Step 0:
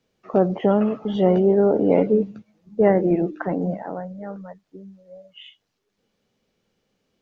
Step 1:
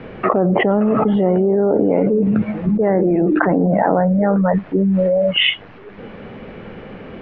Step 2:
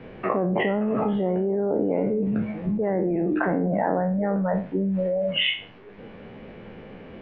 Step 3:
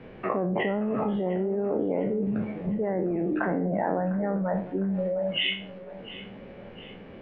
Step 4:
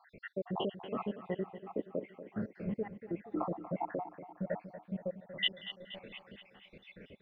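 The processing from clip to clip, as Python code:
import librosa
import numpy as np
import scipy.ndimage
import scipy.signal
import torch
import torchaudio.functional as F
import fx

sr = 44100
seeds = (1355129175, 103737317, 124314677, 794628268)

y1 = scipy.signal.sosfilt(scipy.signal.butter(4, 2300.0, 'lowpass', fs=sr, output='sos'), x)
y1 = fx.env_flatten(y1, sr, amount_pct=100)
y1 = y1 * 10.0 ** (-1.5 / 20.0)
y2 = fx.spec_trails(y1, sr, decay_s=0.37)
y2 = fx.peak_eq(y2, sr, hz=1300.0, db=-4.5, octaves=0.37)
y2 = y2 * 10.0 ** (-9.0 / 20.0)
y3 = fx.echo_feedback(y2, sr, ms=704, feedback_pct=50, wet_db=-16)
y3 = y3 * 10.0 ** (-3.5 / 20.0)
y4 = fx.spec_dropout(y3, sr, seeds[0], share_pct=79)
y4 = fx.tilt_shelf(y4, sr, db=-4.5, hz=1400.0)
y4 = fx.echo_feedback(y4, sr, ms=237, feedback_pct=59, wet_db=-12.5)
y4 = y4 * 10.0 ** (-2.5 / 20.0)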